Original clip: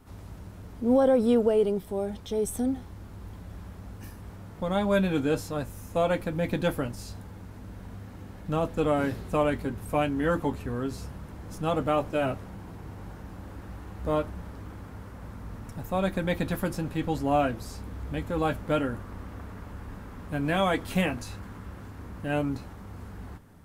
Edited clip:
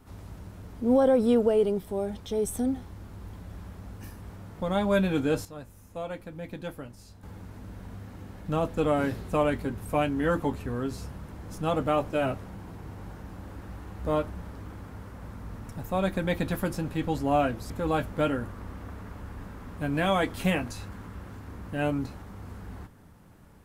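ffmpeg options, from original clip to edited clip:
ffmpeg -i in.wav -filter_complex "[0:a]asplit=4[link_01][link_02][link_03][link_04];[link_01]atrim=end=5.452[link_05];[link_02]atrim=start=5.448:end=7.232,asetpts=PTS-STARTPTS,volume=-10.5dB[link_06];[link_03]atrim=start=7.228:end=17.702[link_07];[link_04]atrim=start=18.208[link_08];[link_05][link_06]acrossfade=duration=0.004:curve1=hsin:curve2=hsin[link_09];[link_09][link_07]acrossfade=duration=0.004:curve1=hsin:curve2=hsin[link_10];[link_10][link_08]acrossfade=duration=0.004:curve1=hsin:curve2=hsin" out.wav

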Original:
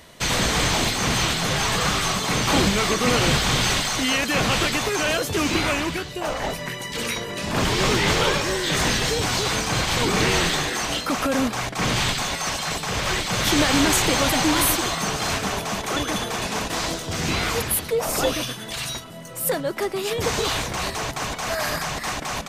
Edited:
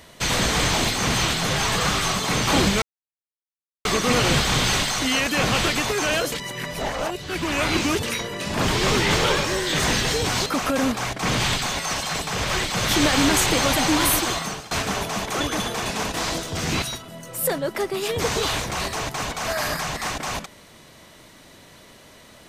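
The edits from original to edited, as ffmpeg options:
ffmpeg -i in.wav -filter_complex "[0:a]asplit=7[link_01][link_02][link_03][link_04][link_05][link_06][link_07];[link_01]atrim=end=2.82,asetpts=PTS-STARTPTS,afade=type=out:start_time=2.816:duration=0.004:curve=hsin,apad=pad_dur=1.03[link_08];[link_02]atrim=start=2.82:end=5.292,asetpts=PTS-STARTPTS,afade=type=in:duration=0.004:curve=hsin[link_09];[link_03]atrim=start=5.288:end=7.002,asetpts=PTS-STARTPTS,areverse[link_10];[link_04]atrim=start=6.998:end=9.432[link_11];[link_05]atrim=start=11.018:end=15.27,asetpts=PTS-STARTPTS,afade=type=out:start_time=3.872:duration=0.38:silence=0.0749894[link_12];[link_06]atrim=start=15.27:end=17.382,asetpts=PTS-STARTPTS,afade=type=in:duration=0.004:curve=hsin:silence=0.0749894[link_13];[link_07]atrim=start=18.838[link_14];[link_08][link_09]concat=n=2:v=0:a=1[link_15];[link_15][link_10]acrossfade=duration=0.004:curve1=hsin:curve2=hsin[link_16];[link_16][link_11]acrossfade=duration=0.004:curve1=hsin:curve2=hsin[link_17];[link_12][link_13]concat=n=2:v=0:a=1[link_18];[link_17][link_18]acrossfade=duration=0.004:curve1=hsin:curve2=hsin[link_19];[link_19][link_14]acrossfade=duration=0.004:curve1=hsin:curve2=hsin" out.wav

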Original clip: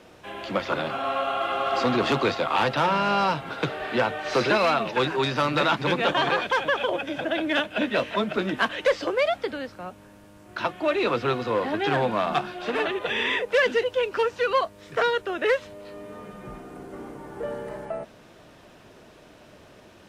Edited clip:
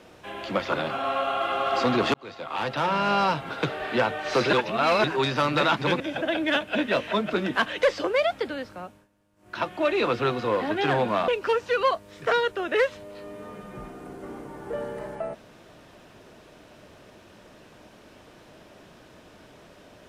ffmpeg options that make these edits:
ffmpeg -i in.wav -filter_complex "[0:a]asplit=8[link_01][link_02][link_03][link_04][link_05][link_06][link_07][link_08];[link_01]atrim=end=2.14,asetpts=PTS-STARTPTS,afade=type=out:start_time=2.136:duration=0.004:curve=hsin[link_09];[link_02]atrim=start=2.14:end=4.532,asetpts=PTS-STARTPTS,afade=type=in:duration=0.97[link_10];[link_03]atrim=start=4.528:end=5.042,asetpts=PTS-STARTPTS,areverse[link_11];[link_04]atrim=start=5.038:end=6.002[link_12];[link_05]atrim=start=7.028:end=10.11,asetpts=PTS-STARTPTS,afade=type=out:start_time=2.672:duration=0.41:curve=qsin:silence=0.11885[link_13];[link_06]atrim=start=10.11:end=10.39,asetpts=PTS-STARTPTS,volume=-18.5dB[link_14];[link_07]atrim=start=10.39:end=12.312,asetpts=PTS-STARTPTS,afade=type=in:duration=0.41:curve=qsin:silence=0.11885[link_15];[link_08]atrim=start=13.978[link_16];[link_09][link_10]concat=n=2:v=0:a=1[link_17];[link_17][link_11]acrossfade=duration=0.004:curve1=hsin:curve2=hsin[link_18];[link_18][link_12]acrossfade=duration=0.004:curve1=hsin:curve2=hsin[link_19];[link_13][link_14][link_15]concat=n=3:v=0:a=1[link_20];[link_19][link_20]acrossfade=duration=0.004:curve1=hsin:curve2=hsin[link_21];[link_21][link_16]acrossfade=duration=0.004:curve1=hsin:curve2=hsin" out.wav

